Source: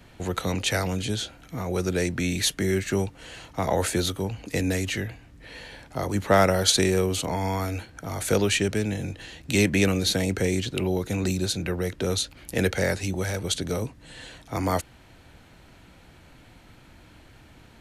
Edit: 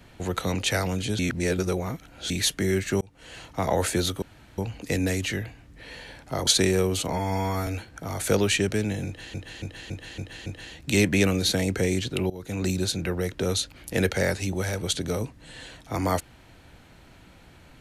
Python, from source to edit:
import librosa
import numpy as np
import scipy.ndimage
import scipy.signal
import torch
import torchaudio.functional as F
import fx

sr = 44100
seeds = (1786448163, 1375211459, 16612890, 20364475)

y = fx.edit(x, sr, fx.reverse_span(start_s=1.19, length_s=1.11),
    fx.fade_in_span(start_s=3.01, length_s=0.37),
    fx.insert_room_tone(at_s=4.22, length_s=0.36),
    fx.cut(start_s=6.11, length_s=0.55),
    fx.stretch_span(start_s=7.32, length_s=0.36, factor=1.5),
    fx.repeat(start_s=9.07, length_s=0.28, count=6),
    fx.fade_in_from(start_s=10.91, length_s=0.39, floor_db=-20.0), tone=tone)